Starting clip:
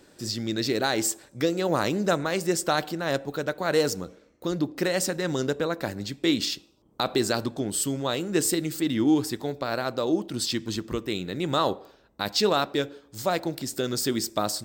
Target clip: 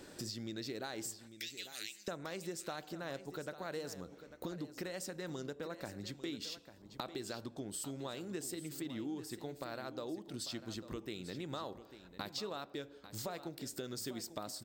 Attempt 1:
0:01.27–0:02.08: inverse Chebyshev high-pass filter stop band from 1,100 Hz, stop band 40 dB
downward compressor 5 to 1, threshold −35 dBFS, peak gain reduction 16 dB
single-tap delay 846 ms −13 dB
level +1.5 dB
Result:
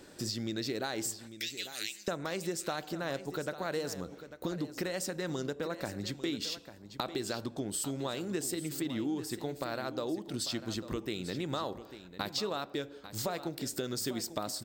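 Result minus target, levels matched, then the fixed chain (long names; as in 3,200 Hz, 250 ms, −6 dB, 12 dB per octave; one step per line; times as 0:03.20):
downward compressor: peak gain reduction −7 dB
0:01.27–0:02.08: inverse Chebyshev high-pass filter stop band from 1,100 Hz, stop band 40 dB
downward compressor 5 to 1, threshold −44 dBFS, peak gain reduction 23 dB
single-tap delay 846 ms −13 dB
level +1.5 dB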